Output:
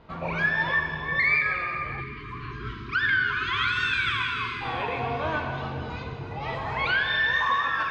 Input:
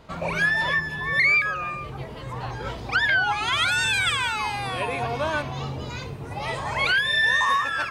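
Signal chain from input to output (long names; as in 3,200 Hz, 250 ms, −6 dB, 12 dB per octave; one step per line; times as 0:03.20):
high-frequency loss of the air 230 metres
mains-hum notches 60/120/180 Hz
dense smooth reverb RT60 2.5 s, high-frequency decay 0.95×, DRR 2.5 dB
time-frequency box erased 0:02.00–0:04.62, 440–990 Hz
notch filter 580 Hz, Q 12
level −2 dB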